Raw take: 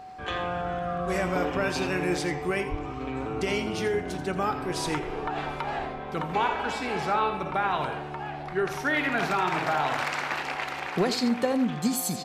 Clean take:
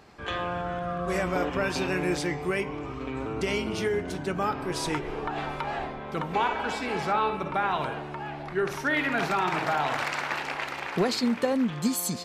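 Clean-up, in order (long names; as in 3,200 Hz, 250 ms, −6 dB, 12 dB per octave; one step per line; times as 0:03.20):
notch filter 750 Hz, Q 30
0:02.70–0:02.82: high-pass filter 140 Hz 24 dB per octave
echo removal 84 ms −12 dB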